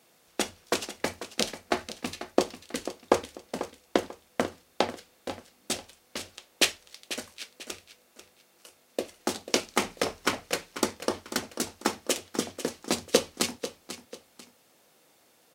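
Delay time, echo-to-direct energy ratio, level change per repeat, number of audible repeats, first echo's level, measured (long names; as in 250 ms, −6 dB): 492 ms, −12.0 dB, −9.5 dB, 2, −12.5 dB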